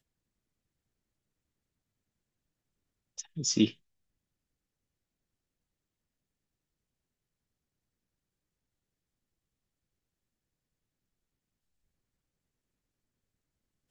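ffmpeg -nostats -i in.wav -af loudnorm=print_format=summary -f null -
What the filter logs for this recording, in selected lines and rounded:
Input Integrated:    -29.2 LUFS
Input True Peak:     -12.7 dBTP
Input LRA:             0.0 LU
Input Threshold:     -41.4 LUFS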